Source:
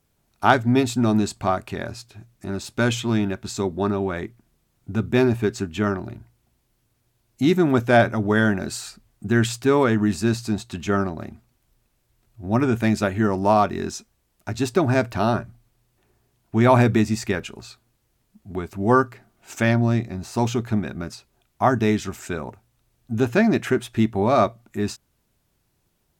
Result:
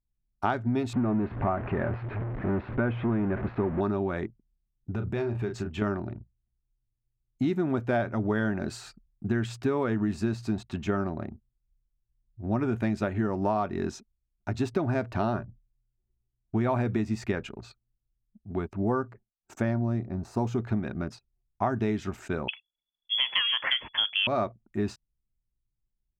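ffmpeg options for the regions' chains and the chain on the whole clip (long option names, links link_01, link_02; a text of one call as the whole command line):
ffmpeg -i in.wav -filter_complex "[0:a]asettb=1/sr,asplit=3[link_01][link_02][link_03];[link_01]atrim=end=0.934[link_04];[link_02]atrim=start=0.93:end=3.81,asetpts=PTS-STARTPTS,afade=type=in:duration=0.004:curve=qsin,afade=type=out:start_time=2.876:duration=0.004:curve=qsin,aeval=exprs='val(0)+0.5*0.0562*sgn(val(0))':channel_layout=same,lowpass=frequency=2100:width=0.5412,lowpass=frequency=2100:width=1.3066[link_05];[link_03]atrim=start=3.806[link_06];[link_04][link_05]acrossfade=duration=0.004:curve1=hsin:curve2=qsin[link_07];[link_07][link_06]acrossfade=duration=0.004:curve1=qsin:curve2=hsin,asettb=1/sr,asplit=3[link_08][link_09][link_10];[link_08]atrim=end=4.924[link_11];[link_09]atrim=start=4.92:end=5.82,asetpts=PTS-STARTPTS,afade=type=in:duration=0.004:curve=qsin,afade=type=out:start_time=0.896:duration=0.004:curve=qsin,equalizer=frequency=260:width_type=o:width=0.46:gain=-8,asplit=2[link_12][link_13];[link_13]adelay=34,volume=-8dB[link_14];[link_12][link_14]amix=inputs=2:normalize=0,atrim=end_sample=39690,acompressor=threshold=-25dB:ratio=4:attack=3.2:release=140:knee=1:detection=peak[link_15];[link_10]atrim=start=5.816[link_16];[link_11][link_15]acrossfade=duration=0.004:curve1=hsin:curve2=qsin[link_17];[link_17][link_16]acrossfade=duration=0.004:curve1=qsin:curve2=hsin,asettb=1/sr,asplit=3[link_18][link_19][link_20];[link_18]atrim=end=18.804[link_21];[link_19]atrim=start=18.8:end=20.58,asetpts=PTS-STARTPTS,afade=type=in:duration=0.004:curve=qsin,afade=type=out:start_time=1.776:duration=0.004:curve=qsin,equalizer=frequency=2900:width=0.88:gain=-8,agate=range=-33dB:threshold=-48dB:ratio=3:release=100:detection=peak[link_22];[link_20]atrim=start=20.576[link_23];[link_21][link_22]acrossfade=duration=0.004:curve1=hsin:curve2=qsin[link_24];[link_24][link_23]acrossfade=duration=0.004:curve1=qsin:curve2=hsin,asettb=1/sr,asplit=3[link_25][link_26][link_27];[link_25]atrim=end=22.484[link_28];[link_26]atrim=start=22.48:end=24.27,asetpts=PTS-STARTPTS,afade=type=in:duration=0.004:curve=qsin,afade=type=out:start_time=1.786:duration=0.004:curve=qsin,equalizer=frequency=930:width_type=o:width=1.6:gain=11,acontrast=39,lowpass=frequency=3000:width_type=q:width=0.5098,lowpass=frequency=3000:width_type=q:width=0.6013,lowpass=frequency=3000:width_type=q:width=0.9,lowpass=frequency=3000:width_type=q:width=2.563,afreqshift=-3500[link_29];[link_27]atrim=start=24.266[link_30];[link_28][link_29]acrossfade=duration=0.004:curve1=hsin:curve2=qsin[link_31];[link_31][link_30]acrossfade=duration=0.004:curve1=qsin:curve2=hsin,anlmdn=0.1,lowpass=frequency=1900:poles=1,acompressor=threshold=-22dB:ratio=6,volume=-1.5dB" out.wav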